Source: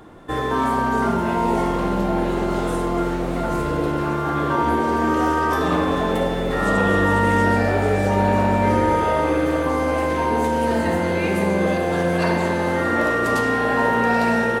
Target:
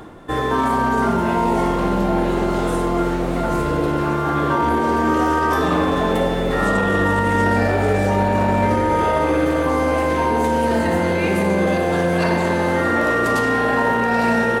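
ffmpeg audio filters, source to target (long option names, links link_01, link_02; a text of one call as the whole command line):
ffmpeg -i in.wav -af "alimiter=limit=-12dB:level=0:latency=1:release=10,areverse,acompressor=mode=upward:threshold=-30dB:ratio=2.5,areverse,volume=2.5dB" out.wav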